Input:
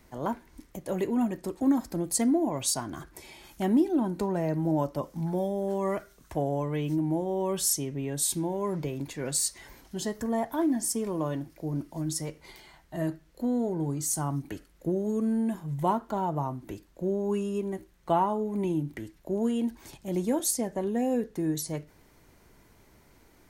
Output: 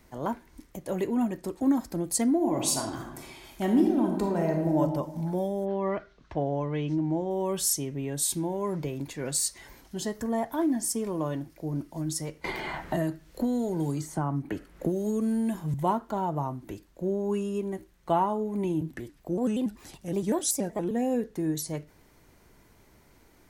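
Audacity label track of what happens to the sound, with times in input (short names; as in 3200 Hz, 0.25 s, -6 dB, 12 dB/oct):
2.360000	4.810000	reverb throw, RT60 1.1 s, DRR 2.5 dB
5.640000	7.290000	LPF 3600 Hz -> 7000 Hz 24 dB/oct
12.440000	15.740000	three-band squash depth 100%
18.810000	20.910000	shaped vibrato square 5.3 Hz, depth 160 cents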